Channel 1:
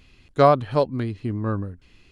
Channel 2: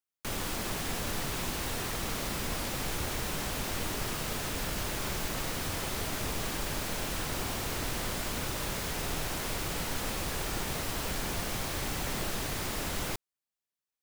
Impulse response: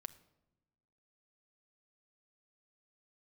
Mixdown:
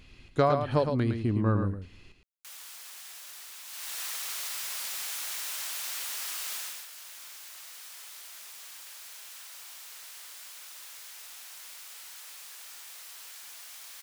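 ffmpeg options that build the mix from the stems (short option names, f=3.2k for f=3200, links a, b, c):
-filter_complex "[0:a]acompressor=threshold=-21dB:ratio=4,volume=-2dB,asplit=3[a][b][c];[b]volume=-8.5dB[d];[c]volume=-5dB[e];[1:a]highpass=1.1k,highshelf=f=2.9k:g=10,adelay=2200,volume=-5.5dB,afade=t=in:st=3.65:d=0.37:silence=0.316228,afade=t=out:st=6.55:d=0.32:silence=0.298538[f];[2:a]atrim=start_sample=2205[g];[d][g]afir=irnorm=-1:irlink=0[h];[e]aecho=0:1:111:1[i];[a][f][h][i]amix=inputs=4:normalize=0"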